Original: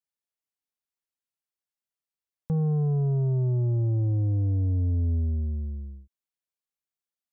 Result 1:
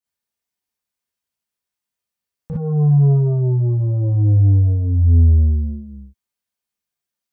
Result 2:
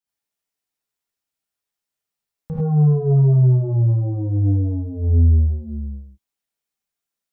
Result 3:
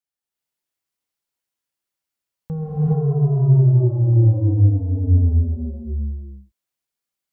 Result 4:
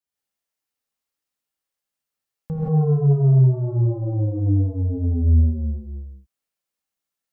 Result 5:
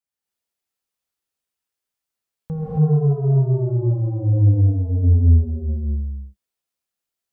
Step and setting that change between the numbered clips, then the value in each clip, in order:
reverb whose tail is shaped and stops, gate: 80, 120, 450, 200, 300 milliseconds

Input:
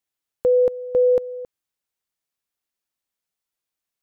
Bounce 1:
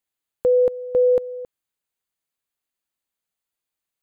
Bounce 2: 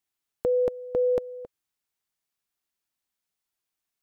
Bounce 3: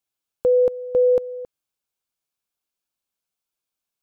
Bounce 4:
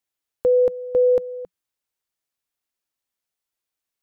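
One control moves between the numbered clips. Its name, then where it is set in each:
notch filter, centre frequency: 5,500, 520, 1,900, 180 Hertz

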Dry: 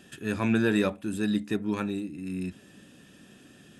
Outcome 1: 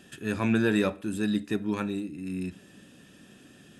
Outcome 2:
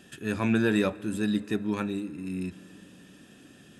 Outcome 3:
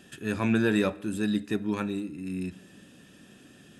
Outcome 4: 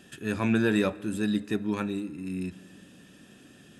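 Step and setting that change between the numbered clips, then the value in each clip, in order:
comb and all-pass reverb, RT60: 0.49, 4.8, 1, 2.3 seconds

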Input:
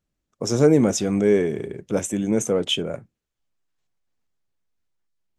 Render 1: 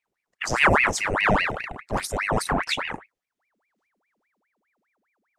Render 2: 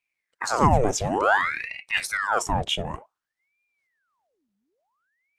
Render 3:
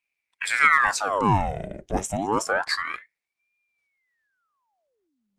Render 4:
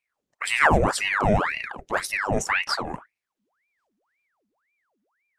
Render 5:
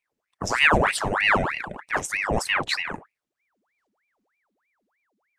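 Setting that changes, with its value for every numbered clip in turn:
ring modulator whose carrier an LFO sweeps, at: 4.9, 0.55, 0.28, 1.9, 3.2 Hertz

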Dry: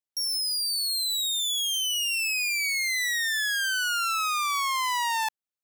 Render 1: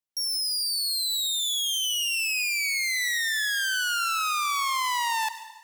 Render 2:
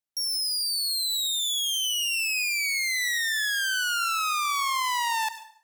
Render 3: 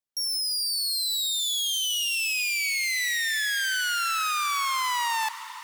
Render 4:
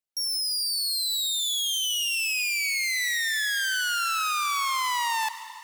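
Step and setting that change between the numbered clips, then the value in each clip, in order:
dense smooth reverb, RT60: 1.2, 0.56, 5.2, 2.5 seconds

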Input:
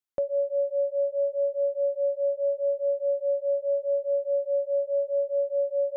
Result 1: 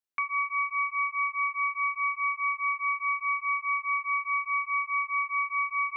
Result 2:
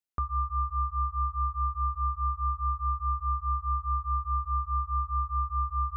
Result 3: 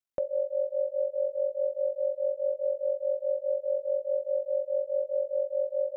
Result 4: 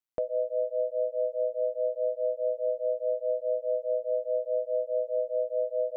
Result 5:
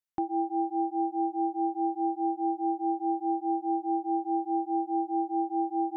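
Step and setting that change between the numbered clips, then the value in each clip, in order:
ring modulation, frequency: 1,700, 630, 23, 59, 230 Hertz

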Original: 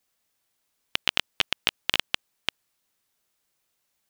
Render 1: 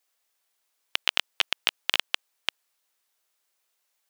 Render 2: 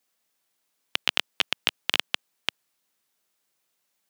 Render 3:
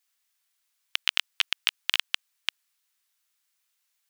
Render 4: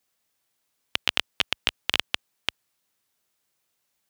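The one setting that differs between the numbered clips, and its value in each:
high-pass filter, corner frequency: 470, 150, 1,300, 52 Hertz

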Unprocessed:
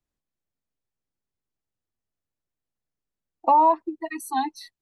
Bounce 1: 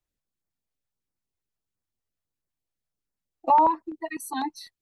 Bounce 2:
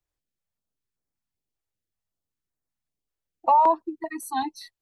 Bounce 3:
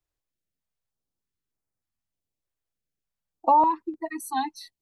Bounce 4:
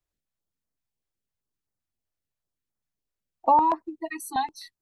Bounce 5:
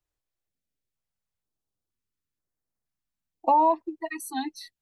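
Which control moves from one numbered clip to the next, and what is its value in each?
notch on a step sequencer, speed: 12, 5.2, 3.3, 7.8, 2.1 Hertz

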